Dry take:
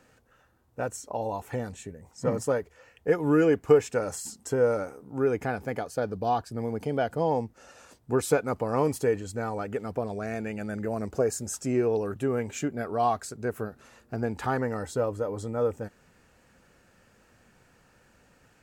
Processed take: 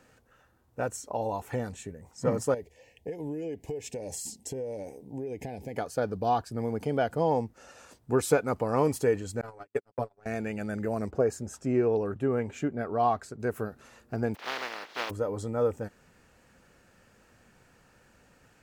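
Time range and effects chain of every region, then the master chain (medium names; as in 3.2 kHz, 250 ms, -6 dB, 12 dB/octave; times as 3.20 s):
2.54–5.77 s: compression 8:1, threshold -32 dBFS + Butterworth band-stop 1.3 kHz, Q 1.1
9.41–10.26 s: gate -30 dBFS, range -59 dB + comb 7.1 ms, depth 67%
11.10–13.40 s: treble shelf 4.4 kHz -11.5 dB + tape noise reduction on one side only decoder only
14.34–15.09 s: spectral contrast reduction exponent 0.13 + high-pass 390 Hz + distance through air 270 m
whole clip: none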